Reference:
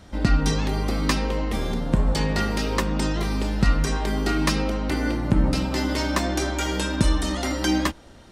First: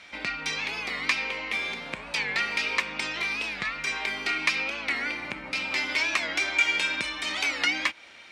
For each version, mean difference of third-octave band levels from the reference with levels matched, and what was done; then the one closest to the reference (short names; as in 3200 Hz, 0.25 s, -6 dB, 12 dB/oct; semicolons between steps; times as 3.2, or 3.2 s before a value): 8.5 dB: bell 2300 Hz +14.5 dB 0.22 oct; compressor 2.5:1, threshold -25 dBFS, peak gain reduction 8 dB; band-pass 2700 Hz, Q 1; record warp 45 rpm, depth 160 cents; gain +6.5 dB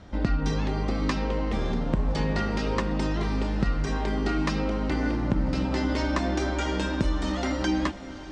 4.0 dB: compressor 3:1, threshold -22 dBFS, peak gain reduction 7 dB; LPF 7400 Hz 24 dB/oct; high shelf 3800 Hz -9 dB; on a send: diffused feedback echo 0.584 s, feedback 60%, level -15 dB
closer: second